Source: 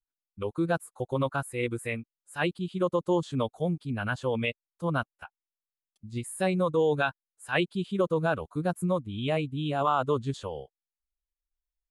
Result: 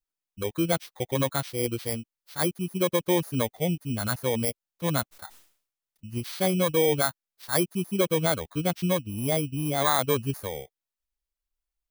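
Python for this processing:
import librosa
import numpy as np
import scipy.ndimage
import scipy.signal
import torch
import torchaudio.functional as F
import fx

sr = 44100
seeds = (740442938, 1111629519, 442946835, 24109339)

y = fx.bit_reversed(x, sr, seeds[0], block=16)
y = fx.sustainer(y, sr, db_per_s=110.0, at=(5.11, 6.1), fade=0.02)
y = F.gain(torch.from_numpy(y), 2.0).numpy()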